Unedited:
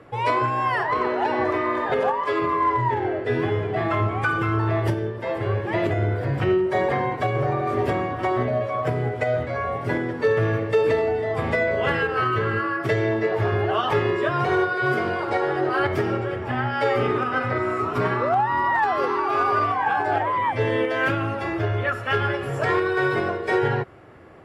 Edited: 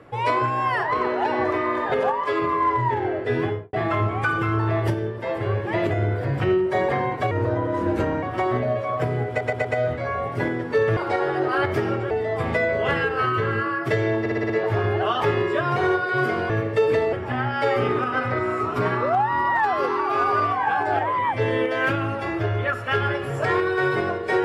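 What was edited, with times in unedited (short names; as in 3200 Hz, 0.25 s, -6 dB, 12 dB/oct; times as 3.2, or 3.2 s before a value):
3.42–3.73 studio fade out
7.31–8.08 speed 84%
9.14 stutter 0.12 s, 4 plays
10.46–11.09 swap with 15.18–16.32
13.18 stutter 0.06 s, 6 plays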